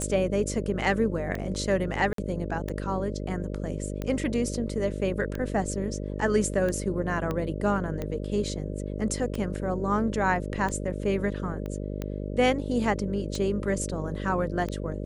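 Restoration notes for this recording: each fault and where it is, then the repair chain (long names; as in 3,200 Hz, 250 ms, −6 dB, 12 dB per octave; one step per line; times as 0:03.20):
mains buzz 50 Hz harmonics 12 −33 dBFS
scratch tick 45 rpm −19 dBFS
0:02.13–0:02.18: drop-out 53 ms
0:07.31: click −17 dBFS
0:11.66: click −24 dBFS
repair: click removal
hum removal 50 Hz, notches 12
repair the gap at 0:02.13, 53 ms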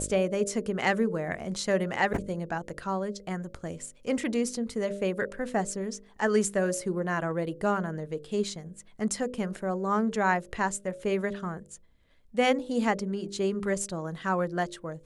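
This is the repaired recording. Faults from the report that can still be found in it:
0:07.31: click
0:11.66: click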